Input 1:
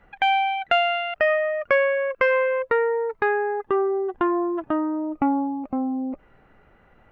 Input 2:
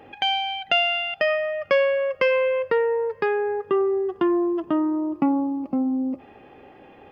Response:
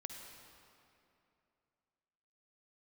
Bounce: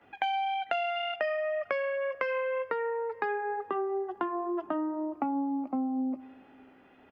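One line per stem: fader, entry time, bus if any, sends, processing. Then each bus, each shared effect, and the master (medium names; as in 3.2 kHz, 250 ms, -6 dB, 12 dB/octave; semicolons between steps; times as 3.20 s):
-2.0 dB, 0.00 s, send -12.5 dB, rippled Chebyshev high-pass 190 Hz, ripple 6 dB
-13.0 dB, 15 ms, no send, FFT band-reject 450–1500 Hz; treble shelf 2.9 kHz +6 dB; wow and flutter 27 cents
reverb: on, RT60 2.7 s, pre-delay 46 ms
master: compression, threshold -28 dBFS, peak gain reduction 10.5 dB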